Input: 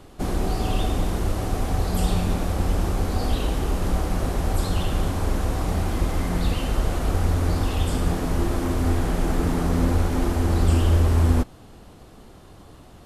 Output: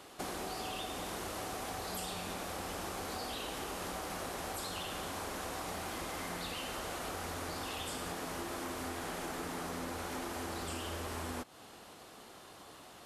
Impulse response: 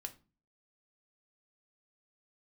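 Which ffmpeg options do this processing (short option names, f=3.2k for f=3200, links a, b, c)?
-af "highpass=f=950:p=1,acompressor=threshold=-39dB:ratio=6,volume=1.5dB"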